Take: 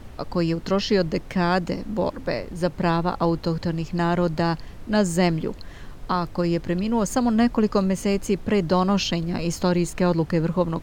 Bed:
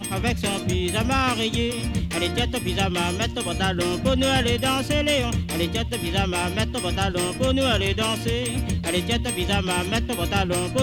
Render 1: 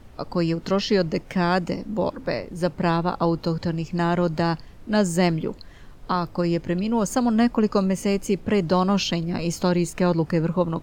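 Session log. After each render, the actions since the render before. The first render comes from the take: noise print and reduce 6 dB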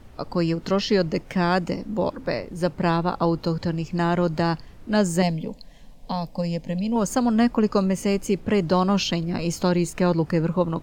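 5.22–6.96 s: static phaser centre 360 Hz, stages 6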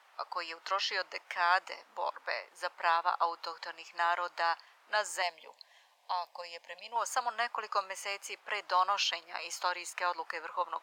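high-pass 860 Hz 24 dB/octave; treble shelf 3.8 kHz -9.5 dB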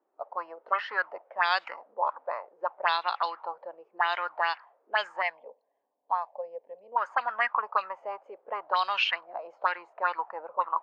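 touch-sensitive low-pass 320–3900 Hz up, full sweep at -25 dBFS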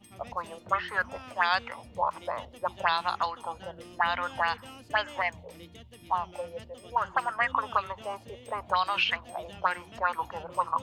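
add bed -24.5 dB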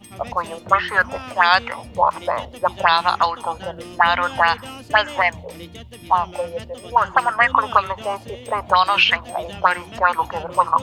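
trim +11.5 dB; peak limiter -1 dBFS, peak gain reduction 2 dB

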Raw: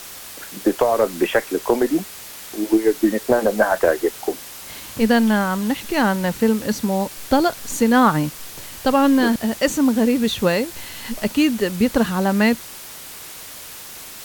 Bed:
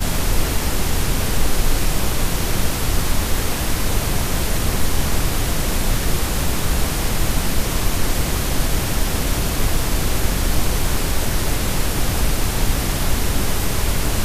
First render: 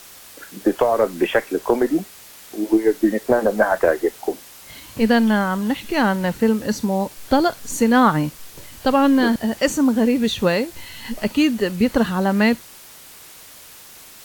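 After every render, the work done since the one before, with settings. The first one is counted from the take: noise print and reduce 6 dB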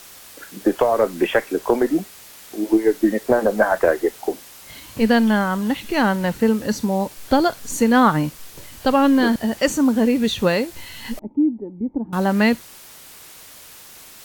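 11.19–12.13 s: cascade formant filter u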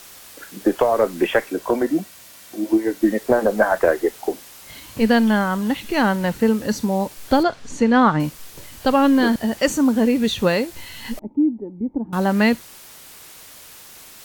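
1.50–3.02 s: comb of notches 420 Hz; 7.43–8.20 s: distance through air 110 m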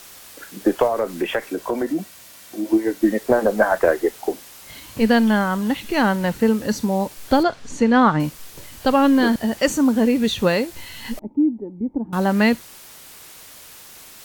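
0.87–2.70 s: compression 2:1, threshold -20 dBFS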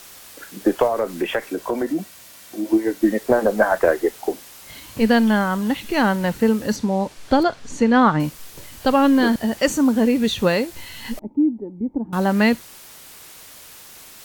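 6.76–7.42 s: distance through air 51 m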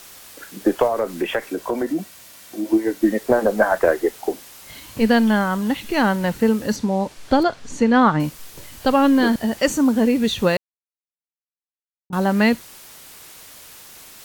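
10.57–12.10 s: mute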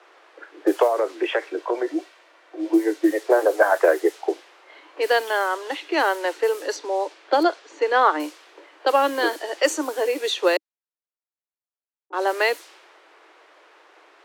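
level-controlled noise filter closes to 1.5 kHz, open at -13.5 dBFS; steep high-pass 310 Hz 96 dB/octave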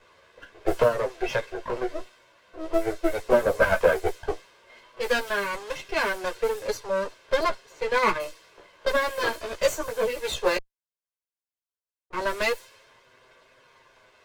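comb filter that takes the minimum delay 1.9 ms; chorus voices 2, 0.15 Hz, delay 12 ms, depth 4.5 ms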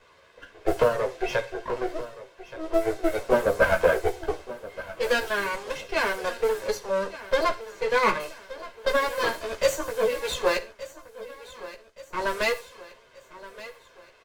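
feedback delay 1174 ms, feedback 49%, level -16.5 dB; gated-style reverb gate 140 ms falling, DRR 11 dB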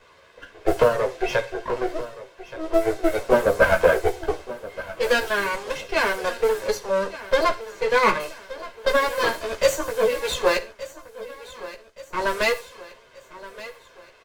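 trim +3.5 dB

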